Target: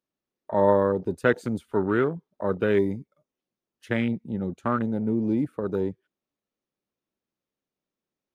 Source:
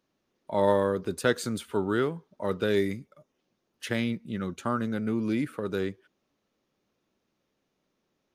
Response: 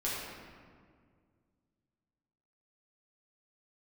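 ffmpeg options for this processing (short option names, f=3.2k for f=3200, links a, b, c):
-af "afwtdn=0.0178,volume=3.5dB"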